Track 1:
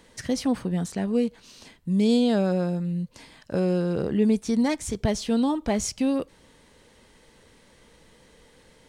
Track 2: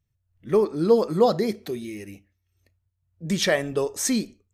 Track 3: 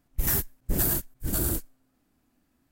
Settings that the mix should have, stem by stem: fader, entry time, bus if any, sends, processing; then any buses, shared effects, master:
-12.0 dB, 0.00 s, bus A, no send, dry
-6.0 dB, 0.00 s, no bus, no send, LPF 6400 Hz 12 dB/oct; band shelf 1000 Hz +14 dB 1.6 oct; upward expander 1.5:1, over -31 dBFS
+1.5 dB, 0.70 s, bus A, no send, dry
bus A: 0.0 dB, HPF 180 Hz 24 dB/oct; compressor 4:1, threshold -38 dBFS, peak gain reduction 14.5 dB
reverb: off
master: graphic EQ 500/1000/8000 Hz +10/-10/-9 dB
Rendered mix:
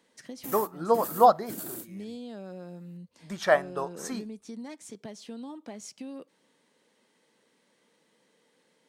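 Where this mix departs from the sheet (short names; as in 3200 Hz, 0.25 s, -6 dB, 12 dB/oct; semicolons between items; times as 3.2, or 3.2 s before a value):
stem 2: missing LPF 6400 Hz 12 dB/oct; stem 3: entry 0.70 s -> 0.25 s; master: missing graphic EQ 500/1000/8000 Hz +10/-10/-9 dB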